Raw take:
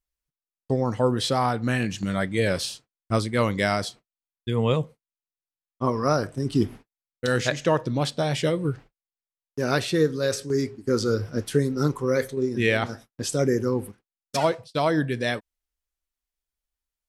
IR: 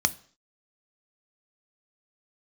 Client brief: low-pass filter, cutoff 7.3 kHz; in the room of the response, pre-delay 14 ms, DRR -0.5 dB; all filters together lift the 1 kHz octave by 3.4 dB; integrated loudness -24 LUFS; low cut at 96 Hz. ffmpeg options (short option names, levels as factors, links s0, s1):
-filter_complex "[0:a]highpass=96,lowpass=7300,equalizer=f=1000:t=o:g=4.5,asplit=2[s0][s1];[1:a]atrim=start_sample=2205,adelay=14[s2];[s1][s2]afir=irnorm=-1:irlink=0,volume=0.355[s3];[s0][s3]amix=inputs=2:normalize=0,volume=0.708"